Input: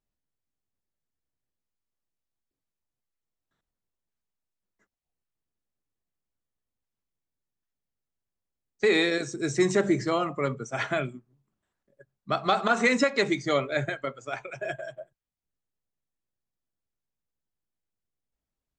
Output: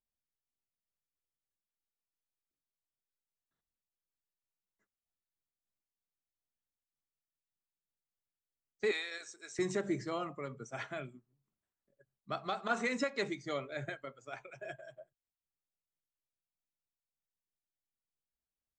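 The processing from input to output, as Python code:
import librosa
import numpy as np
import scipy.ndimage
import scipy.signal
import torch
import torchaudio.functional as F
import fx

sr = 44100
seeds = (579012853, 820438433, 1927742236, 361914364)

y = fx.highpass(x, sr, hz=950.0, slope=12, at=(8.91, 9.59))
y = fx.am_noise(y, sr, seeds[0], hz=5.7, depth_pct=65)
y = F.gain(torch.from_numpy(y), -8.0).numpy()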